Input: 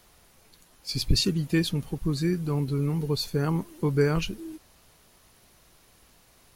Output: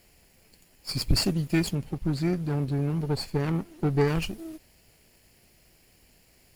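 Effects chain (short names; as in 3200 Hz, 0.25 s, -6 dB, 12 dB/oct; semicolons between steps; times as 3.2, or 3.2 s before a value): minimum comb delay 0.41 ms; 1.75–4.08 high shelf 7000 Hz -8.5 dB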